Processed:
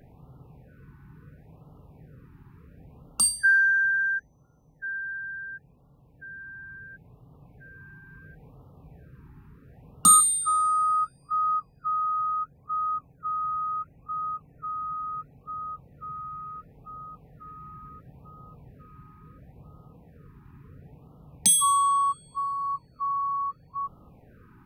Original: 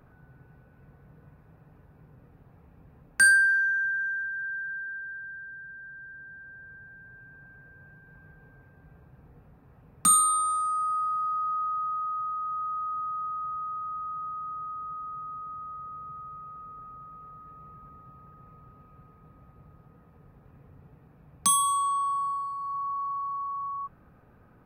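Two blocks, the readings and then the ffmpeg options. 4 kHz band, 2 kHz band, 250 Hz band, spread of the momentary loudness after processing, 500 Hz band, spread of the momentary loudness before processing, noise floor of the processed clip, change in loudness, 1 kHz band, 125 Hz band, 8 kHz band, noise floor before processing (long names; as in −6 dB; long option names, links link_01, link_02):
+4.5 dB, 0.0 dB, +4.5 dB, 22 LU, can't be measured, 23 LU, −58 dBFS, +2.5 dB, +2.5 dB, +4.5 dB, +4.5 dB, −57 dBFS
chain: -af "afftfilt=real='re*(1-between(b*sr/1024,550*pow(2000/550,0.5+0.5*sin(2*PI*0.72*pts/sr))/1.41,550*pow(2000/550,0.5+0.5*sin(2*PI*0.72*pts/sr))*1.41))':imag='im*(1-between(b*sr/1024,550*pow(2000/550,0.5+0.5*sin(2*PI*0.72*pts/sr))/1.41,550*pow(2000/550,0.5+0.5*sin(2*PI*0.72*pts/sr))*1.41))':win_size=1024:overlap=0.75,volume=4.5dB"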